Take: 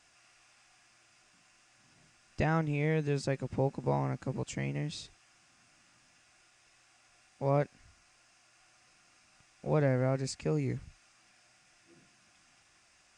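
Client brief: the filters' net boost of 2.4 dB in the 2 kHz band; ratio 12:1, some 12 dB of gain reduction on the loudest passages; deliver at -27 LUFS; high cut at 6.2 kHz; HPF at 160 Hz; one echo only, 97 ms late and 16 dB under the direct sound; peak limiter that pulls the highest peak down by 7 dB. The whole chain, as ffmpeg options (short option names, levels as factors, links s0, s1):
-af "highpass=160,lowpass=6200,equalizer=f=2000:t=o:g=3,acompressor=threshold=0.0158:ratio=12,alimiter=level_in=2.66:limit=0.0631:level=0:latency=1,volume=0.376,aecho=1:1:97:0.158,volume=7.94"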